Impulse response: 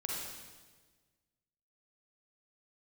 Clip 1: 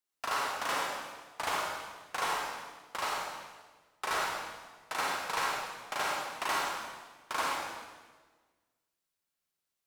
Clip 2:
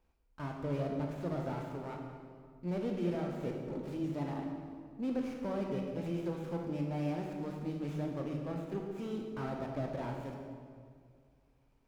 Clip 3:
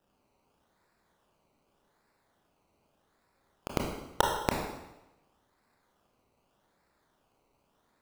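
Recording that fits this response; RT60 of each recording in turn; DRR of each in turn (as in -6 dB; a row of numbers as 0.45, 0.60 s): 1; 1.4, 2.0, 1.0 s; -3.0, 1.0, -0.5 dB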